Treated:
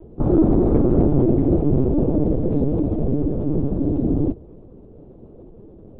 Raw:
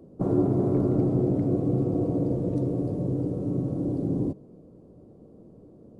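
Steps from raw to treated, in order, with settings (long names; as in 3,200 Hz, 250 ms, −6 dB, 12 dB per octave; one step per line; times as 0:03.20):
linear-prediction vocoder at 8 kHz pitch kept
level +7.5 dB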